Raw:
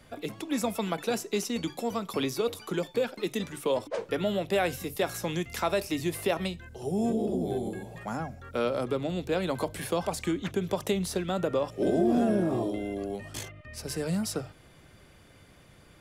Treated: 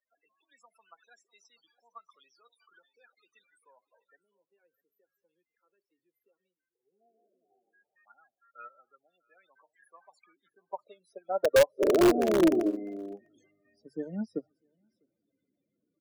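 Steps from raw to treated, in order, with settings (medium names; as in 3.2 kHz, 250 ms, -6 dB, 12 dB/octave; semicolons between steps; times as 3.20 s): loudest bins only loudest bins 16; high-pass sweep 1.4 kHz -> 260 Hz, 9.83–12.87 s; in parallel at -6 dB: integer overflow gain 15.5 dB; on the sum: time-frequency box 4.16–7.01 s, 540–12000 Hz -25 dB; on a send: delay 651 ms -21.5 dB; on the sum: upward expansion 2.5:1, over -34 dBFS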